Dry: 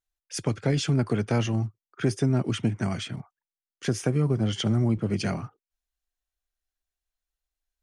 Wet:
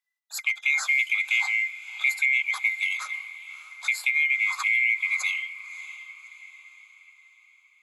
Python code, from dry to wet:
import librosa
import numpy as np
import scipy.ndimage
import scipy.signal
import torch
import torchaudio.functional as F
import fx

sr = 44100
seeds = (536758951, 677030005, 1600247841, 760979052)

y = fx.band_swap(x, sr, width_hz=2000)
y = scipy.signal.sosfilt(scipy.signal.butter(6, 790.0, 'highpass', fs=sr, output='sos'), y)
y = fx.echo_diffused(y, sr, ms=608, feedback_pct=47, wet_db=-15.0)